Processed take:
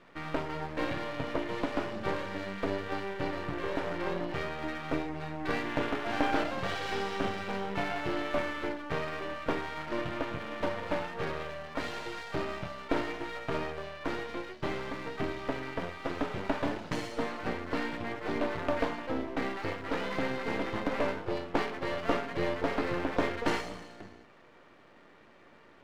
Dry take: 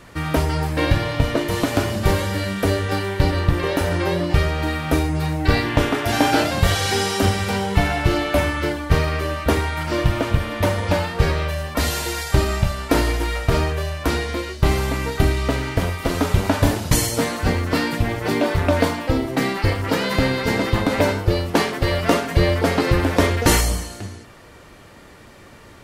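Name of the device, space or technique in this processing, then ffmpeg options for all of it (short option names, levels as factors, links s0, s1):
crystal radio: -af "highpass=210,lowpass=2700,aeval=exprs='if(lt(val(0),0),0.251*val(0),val(0))':c=same,volume=0.422"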